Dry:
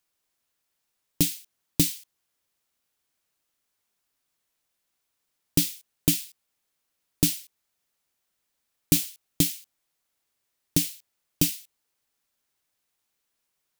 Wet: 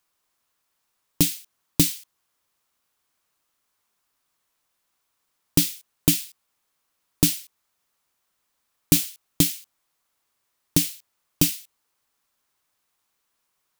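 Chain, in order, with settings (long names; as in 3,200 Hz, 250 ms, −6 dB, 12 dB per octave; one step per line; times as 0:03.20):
parametric band 1,100 Hz +6.5 dB 0.76 octaves
level +3 dB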